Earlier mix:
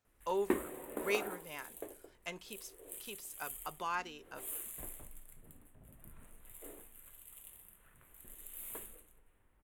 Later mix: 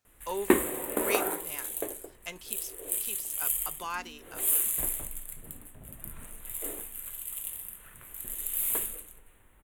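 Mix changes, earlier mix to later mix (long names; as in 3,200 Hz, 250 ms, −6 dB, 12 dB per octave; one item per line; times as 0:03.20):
background +10.0 dB
master: add high-shelf EQ 2,500 Hz +7.5 dB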